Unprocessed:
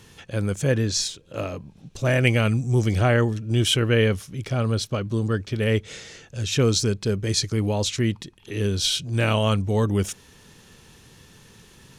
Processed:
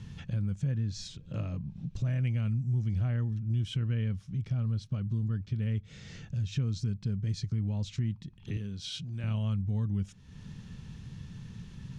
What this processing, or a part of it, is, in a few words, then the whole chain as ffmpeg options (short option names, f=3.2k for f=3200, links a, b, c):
jukebox: -filter_complex "[0:a]lowpass=5.8k,lowshelf=f=260:t=q:w=1.5:g=13.5,acompressor=threshold=-28dB:ratio=3,asettb=1/sr,asplit=3[a][b][c];[a]atrim=end=8.574[d];[b]atrim=start=8.57:end=9.24,asetpts=PTS-STARTPTS,afade=t=in:d=0.004:c=qsin,afade=t=out:st=0.666:d=0.004:c=qsin,highpass=f=260:p=1[e];[c]atrim=start=9.236[f];[d][e]acrossfade=d=0.004:c1=hsin:c2=qsin[g];[g][f]acrossfade=d=0.004:c1=qsin:c2=hsin,volume=-6dB"